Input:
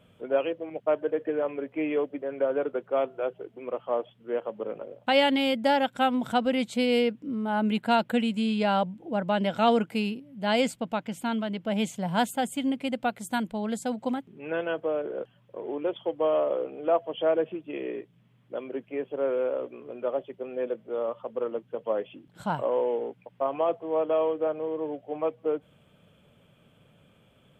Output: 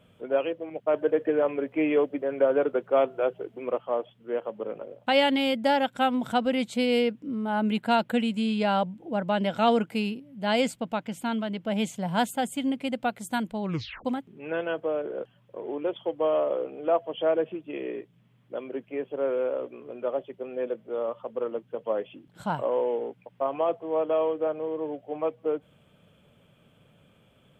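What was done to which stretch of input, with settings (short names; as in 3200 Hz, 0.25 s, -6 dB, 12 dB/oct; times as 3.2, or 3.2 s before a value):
0.94–3.78 gain +4 dB
13.62 tape stop 0.43 s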